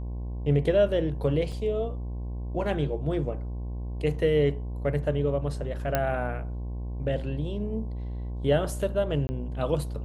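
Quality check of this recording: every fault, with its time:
buzz 60 Hz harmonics 18 -33 dBFS
1.52 gap 3.4 ms
5.95 pop -10 dBFS
9.27–9.29 gap 20 ms

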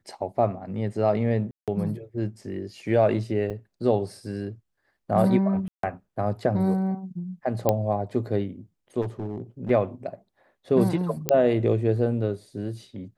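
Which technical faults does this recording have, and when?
1.51–1.68 gap 0.167 s
3.5 gap 4.5 ms
5.68–5.83 gap 0.153 s
7.69 pop -8 dBFS
9.01–9.71 clipped -26 dBFS
11.29 pop -5 dBFS

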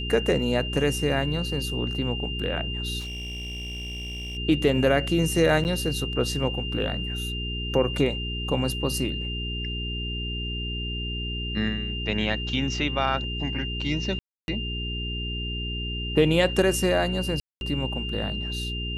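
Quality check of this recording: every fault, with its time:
hum 60 Hz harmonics 7 -32 dBFS
tone 2800 Hz -32 dBFS
2.99–4.38 clipped -31.5 dBFS
5.64–5.65 gap 9.4 ms
14.19–14.48 gap 0.291 s
17.4–17.61 gap 0.211 s

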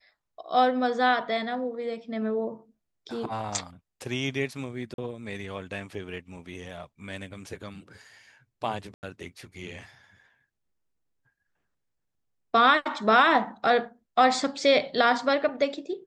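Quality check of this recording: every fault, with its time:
4.94–4.98 gap 42 ms
8.94–9.03 gap 89 ms

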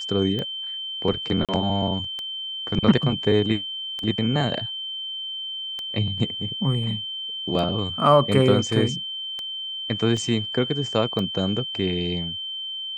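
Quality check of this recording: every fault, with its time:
tick 33 1/3 rpm -17 dBFS
tone 3100 Hz -29 dBFS
1.45–1.49 gap 37 ms
10.17 gap 2 ms

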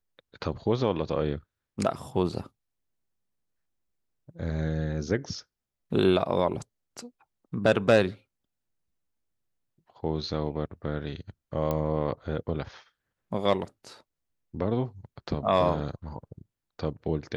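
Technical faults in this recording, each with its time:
11.71 pop -16 dBFS

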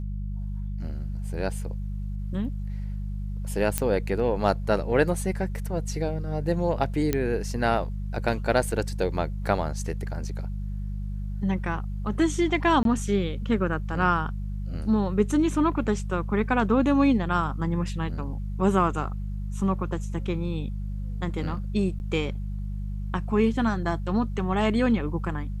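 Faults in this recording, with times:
hum 50 Hz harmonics 4 -31 dBFS
3.78 pop -7 dBFS
7.13 pop -10 dBFS
12.83–12.85 gap 22 ms
21.99–22 gap 9.7 ms

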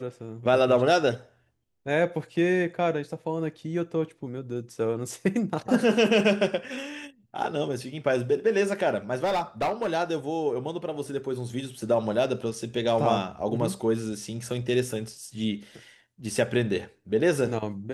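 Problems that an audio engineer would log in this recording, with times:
9.24–9.89 clipped -22 dBFS

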